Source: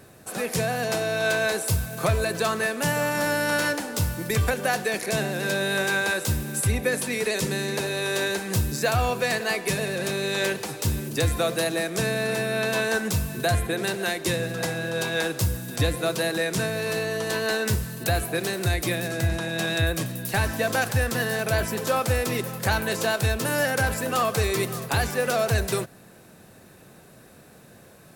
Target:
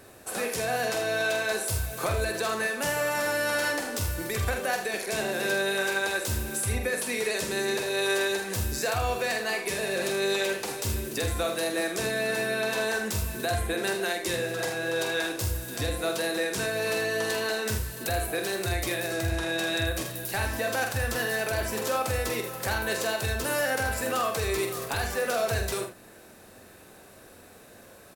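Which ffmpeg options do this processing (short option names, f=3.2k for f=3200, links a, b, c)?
-filter_complex "[0:a]equalizer=f=150:t=o:w=0.85:g=-12,alimiter=limit=-19.5dB:level=0:latency=1:release=281,asplit=2[a][b];[b]aecho=0:1:46|79:0.473|0.335[c];[a][c]amix=inputs=2:normalize=0"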